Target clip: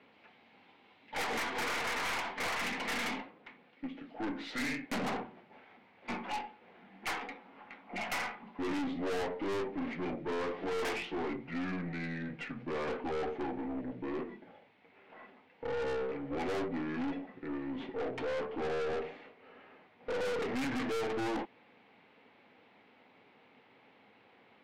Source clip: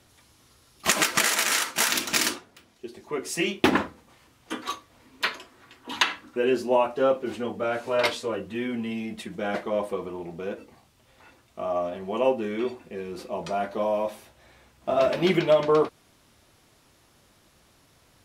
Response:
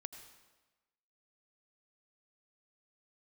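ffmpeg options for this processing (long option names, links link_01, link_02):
-af "highpass=frequency=190:width=0.5412,highpass=frequency=190:width=1.3066,equalizer=frequency=210:width_type=q:width=4:gain=-7,equalizer=frequency=350:width_type=q:width=4:gain=4,equalizer=frequency=640:width_type=q:width=4:gain=5,equalizer=frequency=1100:width_type=q:width=4:gain=6,equalizer=frequency=2900:width_type=q:width=4:gain=7,lowpass=frequency=4400:width=0.5412,lowpass=frequency=4400:width=1.3066,aeval=exprs='(tanh(35.5*val(0)+0.3)-tanh(0.3))/35.5':channel_layout=same,asetrate=32667,aresample=44100,volume=-2dB"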